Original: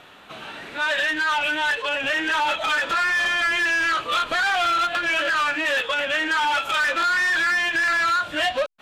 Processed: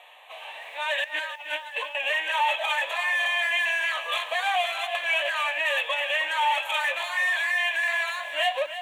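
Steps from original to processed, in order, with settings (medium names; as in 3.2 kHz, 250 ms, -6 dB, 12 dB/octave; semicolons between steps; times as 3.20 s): inverse Chebyshev high-pass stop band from 220 Hz, stop band 40 dB; static phaser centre 1.4 kHz, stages 6; 1.04–1.95 s: compressor with a negative ratio -33 dBFS, ratio -0.5; bit-crushed delay 313 ms, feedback 35%, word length 9-bit, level -11 dB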